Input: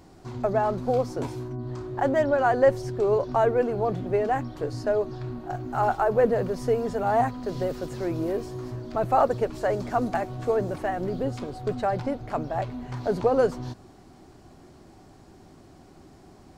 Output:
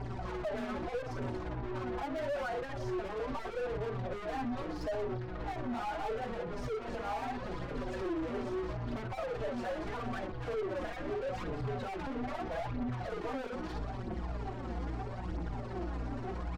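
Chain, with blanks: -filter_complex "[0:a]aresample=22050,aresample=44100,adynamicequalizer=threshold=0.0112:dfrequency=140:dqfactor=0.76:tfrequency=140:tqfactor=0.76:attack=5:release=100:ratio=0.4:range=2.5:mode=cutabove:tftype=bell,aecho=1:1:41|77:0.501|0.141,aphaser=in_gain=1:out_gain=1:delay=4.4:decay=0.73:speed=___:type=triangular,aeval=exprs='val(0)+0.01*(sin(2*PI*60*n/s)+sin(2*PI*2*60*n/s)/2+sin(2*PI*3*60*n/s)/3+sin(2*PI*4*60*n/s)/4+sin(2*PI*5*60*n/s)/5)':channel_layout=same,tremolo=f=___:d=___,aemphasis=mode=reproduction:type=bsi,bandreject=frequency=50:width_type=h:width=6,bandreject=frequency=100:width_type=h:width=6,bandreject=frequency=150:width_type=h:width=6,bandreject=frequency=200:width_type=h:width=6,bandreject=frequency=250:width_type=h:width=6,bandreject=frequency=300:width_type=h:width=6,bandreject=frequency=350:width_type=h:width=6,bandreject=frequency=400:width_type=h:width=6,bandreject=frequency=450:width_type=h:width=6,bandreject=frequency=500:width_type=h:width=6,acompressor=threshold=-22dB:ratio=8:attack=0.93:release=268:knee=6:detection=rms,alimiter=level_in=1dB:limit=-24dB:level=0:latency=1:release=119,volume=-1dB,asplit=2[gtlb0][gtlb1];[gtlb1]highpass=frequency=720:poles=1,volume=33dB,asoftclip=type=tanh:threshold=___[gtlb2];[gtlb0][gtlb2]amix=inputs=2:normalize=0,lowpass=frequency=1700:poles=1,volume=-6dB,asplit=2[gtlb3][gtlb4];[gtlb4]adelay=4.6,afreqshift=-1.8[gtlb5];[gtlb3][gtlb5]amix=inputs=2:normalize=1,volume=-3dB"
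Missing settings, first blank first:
0.78, 17, 0.51, -25dB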